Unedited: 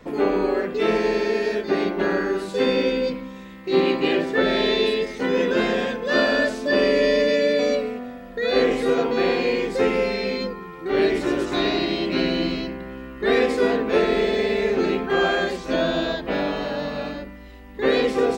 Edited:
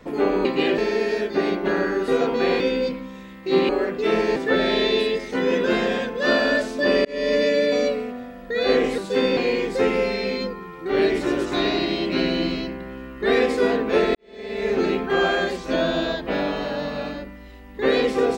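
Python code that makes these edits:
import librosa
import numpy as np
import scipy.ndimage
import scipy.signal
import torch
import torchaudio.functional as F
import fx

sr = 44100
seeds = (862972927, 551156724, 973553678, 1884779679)

y = fx.edit(x, sr, fx.swap(start_s=0.45, length_s=0.67, other_s=3.9, other_length_s=0.33),
    fx.swap(start_s=2.42, length_s=0.39, other_s=8.85, other_length_s=0.52),
    fx.fade_in_span(start_s=6.92, length_s=0.31),
    fx.fade_in_span(start_s=14.15, length_s=0.57, curve='qua'), tone=tone)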